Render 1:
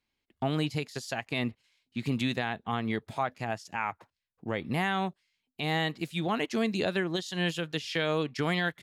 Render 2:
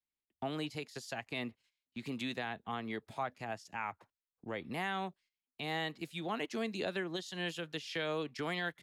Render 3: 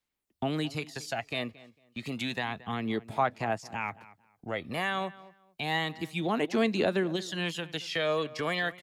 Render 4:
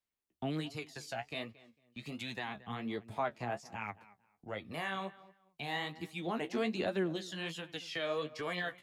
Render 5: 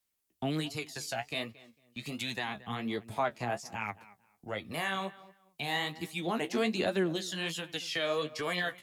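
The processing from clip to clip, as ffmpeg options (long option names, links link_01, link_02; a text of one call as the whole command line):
ffmpeg -i in.wav -filter_complex "[0:a]agate=range=-11dB:threshold=-56dB:ratio=16:detection=peak,acrossover=split=220|490|3200[link_01][link_02][link_03][link_04];[link_01]acompressor=threshold=-43dB:ratio=6[link_05];[link_05][link_02][link_03][link_04]amix=inputs=4:normalize=0,volume=-7dB" out.wav
ffmpeg -i in.wav -filter_complex "[0:a]aphaser=in_gain=1:out_gain=1:delay=1.8:decay=0.44:speed=0.3:type=sinusoidal,asplit=2[link_01][link_02];[link_02]adelay=225,lowpass=frequency=2700:poles=1,volume=-18.5dB,asplit=2[link_03][link_04];[link_04]adelay=225,lowpass=frequency=2700:poles=1,volume=0.24[link_05];[link_01][link_03][link_05]amix=inputs=3:normalize=0,volume=6dB" out.wav
ffmpeg -i in.wav -af "flanger=delay=8.6:depth=8.4:regen=32:speed=1.3:shape=triangular,volume=-3.5dB" out.wav
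ffmpeg -i in.wav -af "aemphasis=mode=production:type=cd,volume=4dB" out.wav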